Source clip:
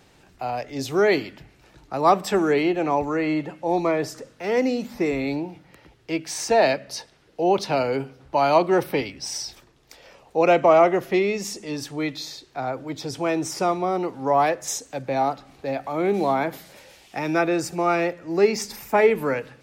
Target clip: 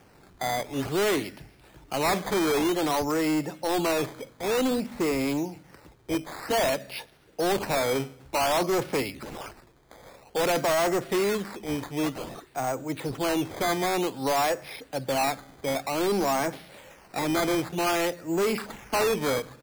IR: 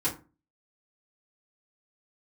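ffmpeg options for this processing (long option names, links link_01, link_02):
-af "aresample=11025,asoftclip=type=hard:threshold=-22dB,aresample=44100,acrusher=samples=11:mix=1:aa=0.000001:lfo=1:lforange=11:lforate=0.53"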